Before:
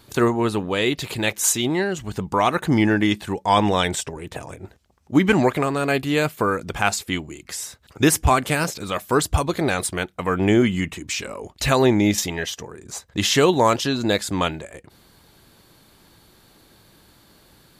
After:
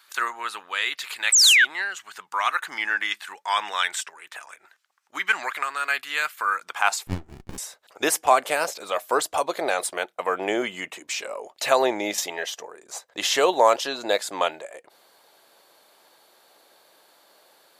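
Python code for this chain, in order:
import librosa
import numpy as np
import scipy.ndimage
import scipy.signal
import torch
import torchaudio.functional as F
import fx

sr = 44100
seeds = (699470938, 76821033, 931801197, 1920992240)

y = fx.filter_sweep_highpass(x, sr, from_hz=1400.0, to_hz=600.0, start_s=6.45, end_s=7.37, q=1.9)
y = fx.spec_paint(y, sr, seeds[0], shape='fall', start_s=1.32, length_s=0.33, low_hz=1400.0, high_hz=8500.0, level_db=-12.0)
y = fx.running_max(y, sr, window=65, at=(7.07, 7.58))
y = y * 10.0 ** (-3.0 / 20.0)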